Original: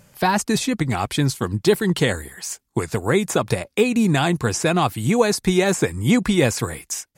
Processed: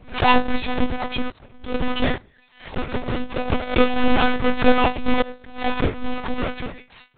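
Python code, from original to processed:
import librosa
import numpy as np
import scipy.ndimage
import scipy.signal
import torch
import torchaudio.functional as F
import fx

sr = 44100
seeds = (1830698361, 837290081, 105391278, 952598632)

p1 = fx.halfwave_hold(x, sr)
p2 = fx.level_steps(p1, sr, step_db=18)
p3 = p1 + F.gain(torch.from_numpy(p2), 0.0).numpy()
p4 = fx.resonator_bank(p3, sr, root=44, chord='fifth', decay_s=0.25)
p5 = fx.tremolo_random(p4, sr, seeds[0], hz=2.3, depth_pct=95)
p6 = fx.lpc_monotone(p5, sr, seeds[1], pitch_hz=250.0, order=10)
p7 = fx.pre_swell(p6, sr, db_per_s=140.0)
y = F.gain(torch.from_numpy(p7), 6.5).numpy()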